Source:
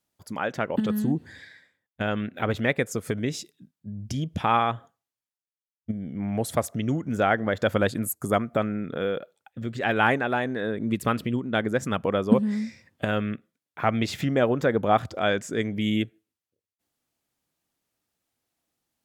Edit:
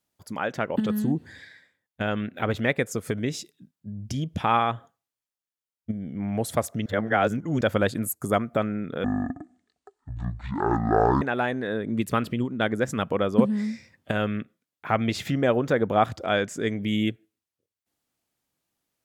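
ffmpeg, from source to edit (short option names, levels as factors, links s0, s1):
-filter_complex "[0:a]asplit=5[s0][s1][s2][s3][s4];[s0]atrim=end=6.862[s5];[s1]atrim=start=6.858:end=7.612,asetpts=PTS-STARTPTS,areverse[s6];[s2]atrim=start=7.608:end=9.044[s7];[s3]atrim=start=9.04:end=10.15,asetpts=PTS-STARTPTS,asetrate=22491,aresample=44100,atrim=end_sample=95982,asetpts=PTS-STARTPTS[s8];[s4]atrim=start=10.146[s9];[s5][s6]acrossfade=d=0.004:c1=hsin:c2=hsin[s10];[s10][s7]acrossfade=d=0.004:c1=hsin:c2=hsin[s11];[s11][s8]acrossfade=d=0.004:c1=hsin:c2=hsin[s12];[s12][s9]acrossfade=d=0.004:c1=hsin:c2=hsin"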